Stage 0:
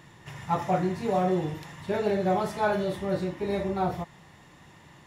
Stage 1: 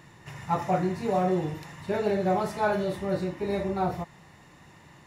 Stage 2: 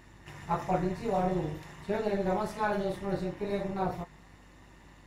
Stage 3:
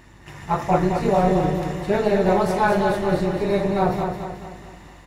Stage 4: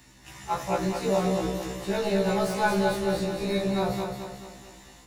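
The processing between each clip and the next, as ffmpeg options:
-af "bandreject=f=3.3k:w=9"
-af "aeval=exprs='val(0)+0.00224*(sin(2*PI*50*n/s)+sin(2*PI*2*50*n/s)/2+sin(2*PI*3*50*n/s)/3+sin(2*PI*4*50*n/s)/4+sin(2*PI*5*50*n/s)/5)':c=same,tremolo=f=210:d=0.71,flanger=delay=3.3:depth=3.5:regen=-70:speed=0.43:shape=sinusoidal,volume=3.5dB"
-filter_complex "[0:a]dynaudnorm=f=230:g=5:m=4.5dB,asplit=2[a][b];[b]aecho=0:1:217|434|651|868|1085|1302:0.501|0.231|0.106|0.0488|0.0224|0.0103[c];[a][c]amix=inputs=2:normalize=0,volume=6dB"
-filter_complex "[0:a]acrossover=split=120|410|3500[a][b][c][d];[d]aeval=exprs='0.0398*sin(PI/2*2.51*val(0)/0.0398)':c=same[e];[a][b][c][e]amix=inputs=4:normalize=0,afftfilt=real='re*1.73*eq(mod(b,3),0)':imag='im*1.73*eq(mod(b,3),0)':win_size=2048:overlap=0.75,volume=-4.5dB"

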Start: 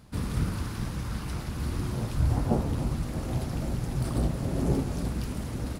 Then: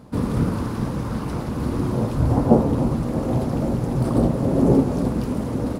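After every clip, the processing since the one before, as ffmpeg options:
-af "equalizer=f=125:t=o:w=1:g=5,equalizer=f=250:t=o:w=1:g=10,equalizer=f=500:t=o:w=1:g=11,equalizer=f=1k:t=o:w=1:g=8"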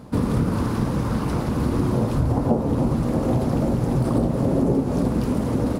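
-af "acompressor=threshold=-20dB:ratio=6,volume=3.5dB"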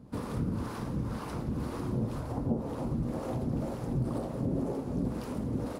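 -filter_complex "[0:a]acrossover=split=420[a][b];[a]aeval=exprs='val(0)*(1-0.7/2+0.7/2*cos(2*PI*2*n/s))':c=same[c];[b]aeval=exprs='val(0)*(1-0.7/2-0.7/2*cos(2*PI*2*n/s))':c=same[d];[c][d]amix=inputs=2:normalize=0,volume=-8.5dB"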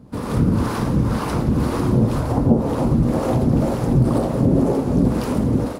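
-af "dynaudnorm=f=110:g=5:m=8dB,volume=7dB"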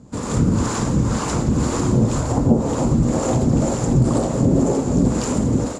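-af "lowpass=f=7.2k:t=q:w=11"

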